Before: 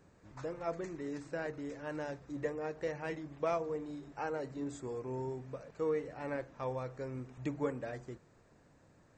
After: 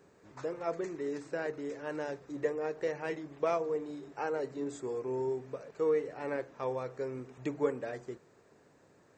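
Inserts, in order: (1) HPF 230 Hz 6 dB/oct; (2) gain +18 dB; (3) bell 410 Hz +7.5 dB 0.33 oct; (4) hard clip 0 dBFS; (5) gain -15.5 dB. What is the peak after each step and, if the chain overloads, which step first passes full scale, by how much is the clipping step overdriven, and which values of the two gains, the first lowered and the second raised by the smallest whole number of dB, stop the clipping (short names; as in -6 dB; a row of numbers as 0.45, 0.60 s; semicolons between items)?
-22.0, -4.0, -2.0, -2.0, -17.5 dBFS; no overload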